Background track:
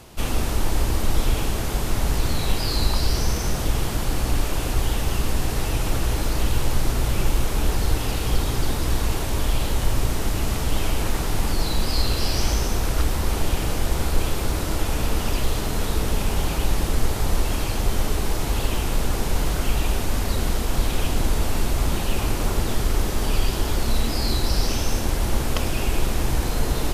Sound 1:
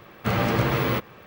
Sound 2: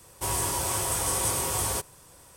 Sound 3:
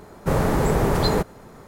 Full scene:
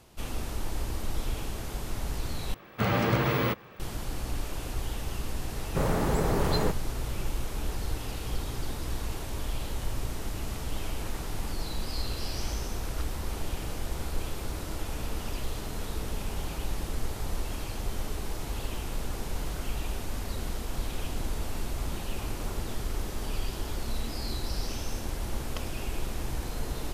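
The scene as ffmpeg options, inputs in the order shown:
ffmpeg -i bed.wav -i cue0.wav -i cue1.wav -i cue2.wav -filter_complex "[0:a]volume=-11dB,asplit=2[link_01][link_02];[link_01]atrim=end=2.544[link_03];[1:a]atrim=end=1.26,asetpts=PTS-STARTPTS,volume=-3dB[link_04];[link_02]atrim=start=3.796[link_05];[3:a]atrim=end=1.67,asetpts=PTS-STARTPTS,volume=-7dB,afade=type=in:duration=0.004:curve=hsin,afade=type=out:start_time=1.666:duration=0.004:curve=hsin,adelay=242109S[link_06];[link_03][link_04]acrossfade=duration=0.004:curve1=hsin:curve2=hsin[link_07];[link_07][link_05]acrossfade=duration=0.004:curve1=hsin:curve2=hsin[link_08];[link_08][link_06]amix=inputs=2:normalize=0" out.wav

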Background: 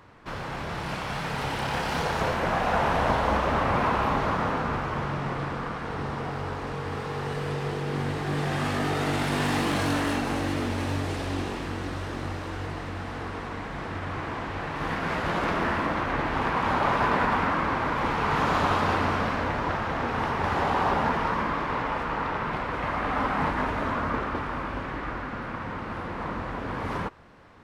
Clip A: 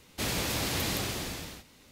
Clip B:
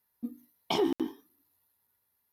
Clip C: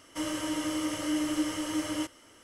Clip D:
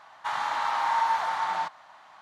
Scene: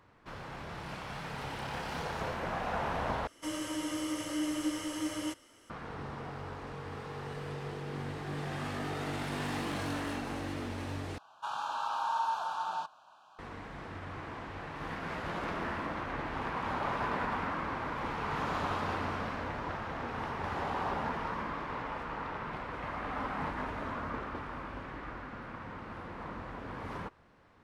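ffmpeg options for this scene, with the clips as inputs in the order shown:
ffmpeg -i bed.wav -i cue0.wav -i cue1.wav -i cue2.wav -i cue3.wav -filter_complex "[0:a]volume=-10dB[link_01];[4:a]asuperstop=centerf=2000:order=8:qfactor=2.3[link_02];[link_01]asplit=3[link_03][link_04][link_05];[link_03]atrim=end=3.274[link_06];[3:a]atrim=end=2.43,asetpts=PTS-STARTPTS,volume=-4dB[link_07];[link_04]atrim=start=5.696:end=11.184[link_08];[link_02]atrim=end=2.21,asetpts=PTS-STARTPTS,volume=-7dB[link_09];[link_05]atrim=start=13.386[link_10];[link_06][link_07]acrossfade=duration=0.004:curve1=hsin:curve2=hsin[link_11];[link_11][link_08]acrossfade=duration=0.004:curve1=hsin:curve2=hsin[link_12];[link_12][link_09]acrossfade=duration=0.004:curve1=hsin:curve2=hsin[link_13];[link_13][link_10]acrossfade=duration=0.004:curve1=hsin:curve2=hsin" out.wav

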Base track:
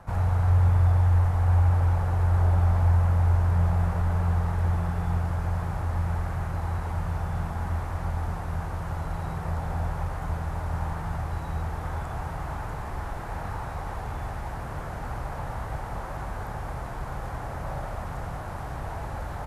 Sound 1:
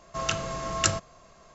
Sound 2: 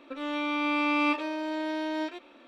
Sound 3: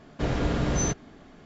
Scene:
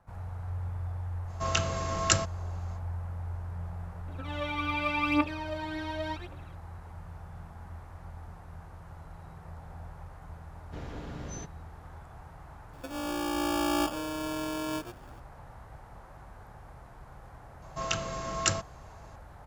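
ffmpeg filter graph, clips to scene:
ffmpeg -i bed.wav -i cue0.wav -i cue1.wav -i cue2.wav -filter_complex "[1:a]asplit=2[link_01][link_02];[2:a]asplit=2[link_03][link_04];[0:a]volume=-15.5dB[link_05];[link_03]aphaser=in_gain=1:out_gain=1:delay=2.8:decay=0.69:speed=0.89:type=triangular[link_06];[link_04]acrusher=samples=22:mix=1:aa=0.000001[link_07];[link_01]atrim=end=1.54,asetpts=PTS-STARTPTS,volume=-0.5dB,afade=type=in:duration=0.05,afade=type=out:start_time=1.49:duration=0.05,adelay=1260[link_08];[link_06]atrim=end=2.47,asetpts=PTS-STARTPTS,volume=-5dB,afade=type=in:duration=0.004:curve=hsin,afade=type=out:start_time=2.466:duration=0.004:curve=hsin,adelay=4080[link_09];[3:a]atrim=end=1.45,asetpts=PTS-STARTPTS,volume=-15.5dB,afade=type=in:duration=0.004:curve=hsin,afade=type=out:start_time=1.446:duration=0.004:curve=hsin,adelay=10530[link_10];[link_07]atrim=end=2.47,asetpts=PTS-STARTPTS,volume=-2.5dB,afade=type=in:duration=0.004:curve=hsin,afade=type=out:start_time=2.466:duration=0.004:curve=hsin,adelay=12730[link_11];[link_02]atrim=end=1.54,asetpts=PTS-STARTPTS,volume=-3dB,afade=type=in:duration=0.004:curve=hsin,afade=type=out:start_time=1.536:duration=0.004:curve=hsin,adelay=17620[link_12];[link_05][link_08][link_09][link_10][link_11][link_12]amix=inputs=6:normalize=0" out.wav

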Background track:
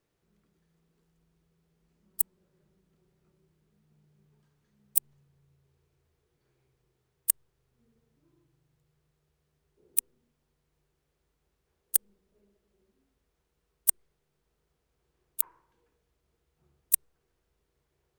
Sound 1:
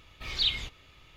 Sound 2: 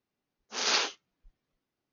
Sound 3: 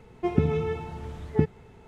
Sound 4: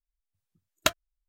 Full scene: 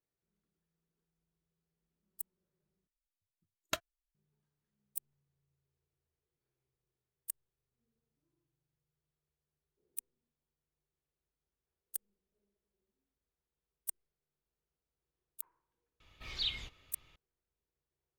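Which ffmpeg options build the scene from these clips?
ffmpeg -i bed.wav -i cue0.wav -i cue1.wav -i cue2.wav -i cue3.wav -filter_complex "[0:a]volume=-16dB,asplit=2[link_01][link_02];[link_01]atrim=end=2.874[link_03];[4:a]atrim=end=1.28,asetpts=PTS-STARTPTS,volume=-12dB[link_04];[link_02]atrim=start=4.146[link_05];[1:a]atrim=end=1.16,asetpts=PTS-STARTPTS,volume=-8.5dB,afade=type=in:duration=0.004:curve=hsin,afade=type=out:start_time=1.156:duration=0.004:curve=hsin,adelay=16000[link_06];[link_03][link_04]acrossfade=duration=0.004:curve1=hsin:curve2=hsin[link_07];[link_07][link_05]acrossfade=duration=0.004:curve1=hsin:curve2=hsin[link_08];[link_08][link_06]amix=inputs=2:normalize=0" out.wav

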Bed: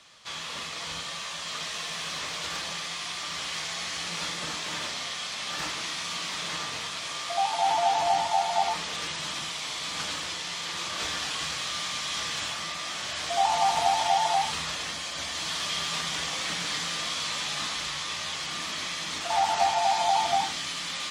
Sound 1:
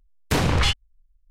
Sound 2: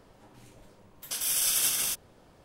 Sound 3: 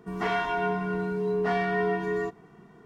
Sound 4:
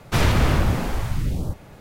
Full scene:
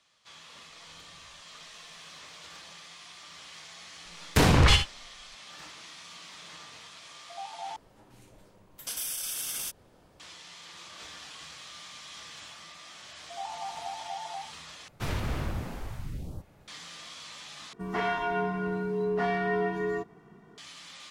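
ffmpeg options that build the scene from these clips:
ffmpeg -i bed.wav -i cue0.wav -i cue1.wav -i cue2.wav -i cue3.wav -filter_complex "[1:a]asplit=2[link_01][link_02];[0:a]volume=-14dB[link_03];[link_01]acompressor=threshold=-48dB:ratio=6:attack=3.2:release=140:knee=1:detection=peak[link_04];[link_02]aecho=1:1:60|75:0.376|0.188[link_05];[2:a]alimiter=limit=-21.5dB:level=0:latency=1:release=113[link_06];[link_03]asplit=4[link_07][link_08][link_09][link_10];[link_07]atrim=end=7.764[link_11];[link_06]atrim=end=2.44,asetpts=PTS-STARTPTS,volume=-2dB[link_12];[link_08]atrim=start=10.196:end=14.884[link_13];[4:a]atrim=end=1.8,asetpts=PTS-STARTPTS,volume=-13.5dB[link_14];[link_09]atrim=start=16.676:end=17.734[link_15];[3:a]atrim=end=2.85,asetpts=PTS-STARTPTS,volume=-2dB[link_16];[link_10]atrim=start=20.576[link_17];[link_04]atrim=end=1.3,asetpts=PTS-STARTPTS,volume=-15dB,afade=type=in:duration=0.004:curve=hsin,afade=type=out:start_time=1.296:duration=0.004:curve=hsin,adelay=690[link_18];[link_05]atrim=end=1.3,asetpts=PTS-STARTPTS,afade=type=in:duration=0.004:curve=hsin,afade=type=out:start_time=1.296:duration=0.004:curve=hsin,adelay=178605S[link_19];[link_11][link_12]acrossfade=duration=0.004:curve1=hsin:curve2=hsin[link_20];[link_20][link_13]acrossfade=duration=0.004:curve1=hsin:curve2=hsin[link_21];[link_21][link_14]acrossfade=duration=0.004:curve1=hsin:curve2=hsin[link_22];[link_22][link_15]acrossfade=duration=0.004:curve1=hsin:curve2=hsin[link_23];[link_23][link_16]acrossfade=duration=0.004:curve1=hsin:curve2=hsin[link_24];[link_24][link_17]acrossfade=duration=0.004:curve1=hsin:curve2=hsin[link_25];[link_25][link_18][link_19]amix=inputs=3:normalize=0" out.wav

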